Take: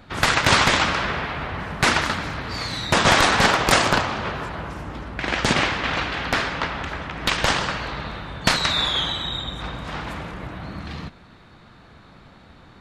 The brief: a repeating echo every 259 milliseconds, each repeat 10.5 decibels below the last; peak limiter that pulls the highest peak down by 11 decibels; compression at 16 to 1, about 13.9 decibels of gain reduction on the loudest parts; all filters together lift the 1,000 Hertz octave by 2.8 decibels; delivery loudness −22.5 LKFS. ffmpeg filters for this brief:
ffmpeg -i in.wav -af "equalizer=frequency=1000:width_type=o:gain=3.5,acompressor=threshold=-25dB:ratio=16,alimiter=limit=-19dB:level=0:latency=1,aecho=1:1:259|518|777:0.299|0.0896|0.0269,volume=7.5dB" out.wav

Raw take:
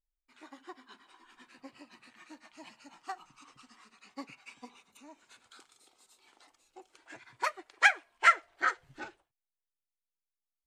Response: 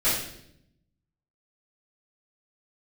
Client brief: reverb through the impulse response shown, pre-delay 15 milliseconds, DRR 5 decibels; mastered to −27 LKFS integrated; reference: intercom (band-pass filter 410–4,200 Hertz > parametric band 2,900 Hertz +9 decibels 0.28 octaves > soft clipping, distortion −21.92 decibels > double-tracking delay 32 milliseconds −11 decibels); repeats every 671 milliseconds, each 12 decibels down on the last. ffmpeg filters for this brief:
-filter_complex "[0:a]aecho=1:1:671|1342|2013:0.251|0.0628|0.0157,asplit=2[link_01][link_02];[1:a]atrim=start_sample=2205,adelay=15[link_03];[link_02][link_03]afir=irnorm=-1:irlink=0,volume=-18.5dB[link_04];[link_01][link_04]amix=inputs=2:normalize=0,highpass=410,lowpass=4200,equalizer=frequency=2900:width_type=o:width=0.28:gain=9,asoftclip=threshold=-9.5dB,asplit=2[link_05][link_06];[link_06]adelay=32,volume=-11dB[link_07];[link_05][link_07]amix=inputs=2:normalize=0,volume=1.5dB"

